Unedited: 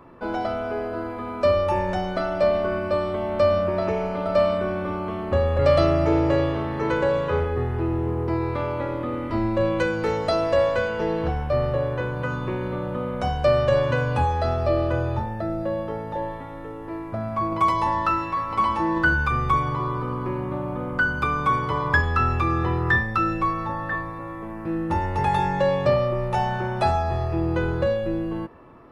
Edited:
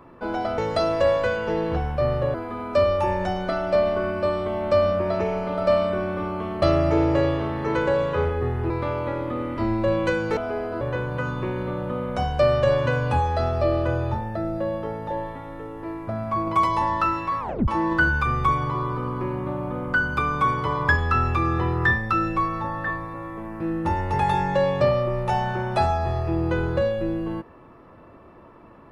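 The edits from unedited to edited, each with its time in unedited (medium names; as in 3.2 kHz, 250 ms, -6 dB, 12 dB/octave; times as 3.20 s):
0.58–1.02 s: swap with 10.10–11.86 s
5.30–5.77 s: delete
7.85–8.43 s: delete
18.45 s: tape stop 0.28 s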